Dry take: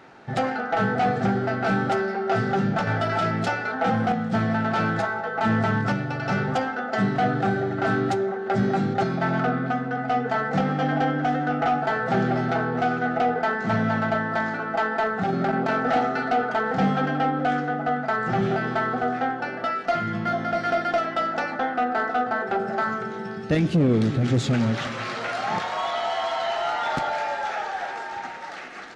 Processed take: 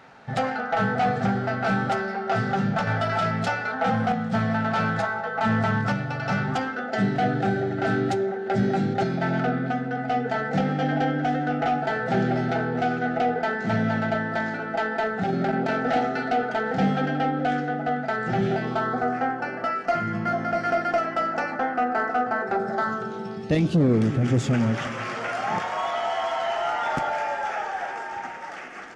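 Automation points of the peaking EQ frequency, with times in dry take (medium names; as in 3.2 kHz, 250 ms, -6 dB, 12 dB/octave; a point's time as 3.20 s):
peaking EQ -12 dB 0.36 oct
6.31 s 340 Hz
6.91 s 1.1 kHz
18.52 s 1.1 kHz
19.09 s 3.6 kHz
22.37 s 3.6 kHz
23.53 s 1.4 kHz
24.02 s 4 kHz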